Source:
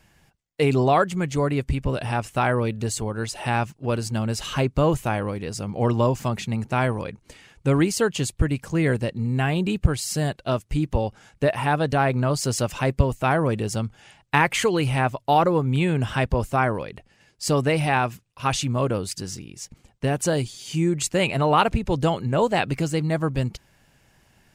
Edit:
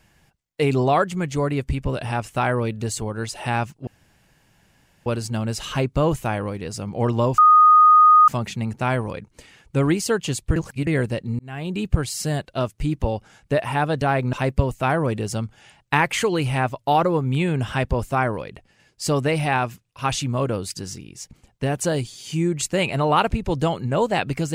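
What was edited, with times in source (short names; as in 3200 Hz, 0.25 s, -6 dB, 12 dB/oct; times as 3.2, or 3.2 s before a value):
3.87 insert room tone 1.19 s
6.19 add tone 1240 Hz -8.5 dBFS 0.90 s
8.47–8.78 reverse
9.3–9.79 fade in
12.24–12.74 cut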